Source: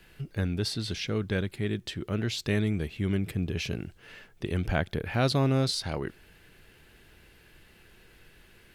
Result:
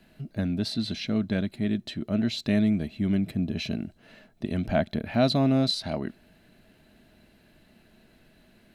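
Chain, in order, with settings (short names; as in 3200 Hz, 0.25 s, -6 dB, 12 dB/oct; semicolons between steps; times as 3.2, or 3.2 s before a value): dynamic EQ 2700 Hz, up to +5 dB, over -44 dBFS, Q 0.72; small resonant body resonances 230/630/4000 Hz, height 16 dB, ringing for 35 ms; gain -6.5 dB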